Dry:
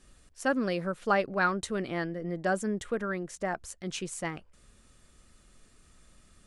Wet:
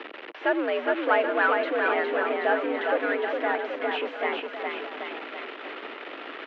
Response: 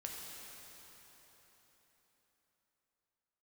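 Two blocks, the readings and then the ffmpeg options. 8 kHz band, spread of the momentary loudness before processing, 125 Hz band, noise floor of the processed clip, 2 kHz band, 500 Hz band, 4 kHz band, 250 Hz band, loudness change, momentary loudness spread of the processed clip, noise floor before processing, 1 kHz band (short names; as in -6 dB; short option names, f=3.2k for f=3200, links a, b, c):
under -25 dB, 9 LU, under -25 dB, -42 dBFS, +8.0 dB, +7.5 dB, +6.5 dB, +0.5 dB, +5.0 dB, 14 LU, -62 dBFS, +6.5 dB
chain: -af "aeval=exprs='val(0)+0.5*0.0398*sgn(val(0))':c=same,aecho=1:1:410|779|1111|1410|1679:0.631|0.398|0.251|0.158|0.1,highpass=f=250:t=q:w=0.5412,highpass=f=250:t=q:w=1.307,lowpass=f=3k:t=q:w=0.5176,lowpass=f=3k:t=q:w=0.7071,lowpass=f=3k:t=q:w=1.932,afreqshift=76,volume=1.5dB"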